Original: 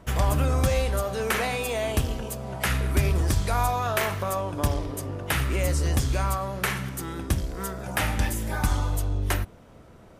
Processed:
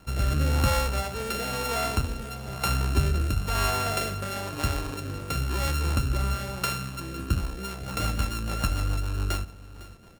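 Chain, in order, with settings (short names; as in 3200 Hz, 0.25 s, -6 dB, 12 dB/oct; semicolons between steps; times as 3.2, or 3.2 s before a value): sample sorter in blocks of 32 samples; rotary speaker horn 1 Hz, later 7 Hz, at 7.13; echo 0.505 s -17.5 dB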